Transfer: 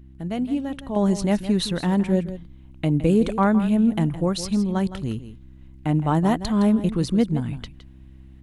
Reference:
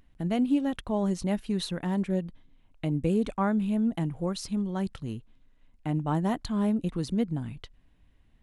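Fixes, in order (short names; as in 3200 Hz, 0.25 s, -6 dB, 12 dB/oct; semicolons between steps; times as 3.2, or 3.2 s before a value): de-hum 65.6 Hz, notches 5; inverse comb 0.164 s -13 dB; gain correction -7.5 dB, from 0.96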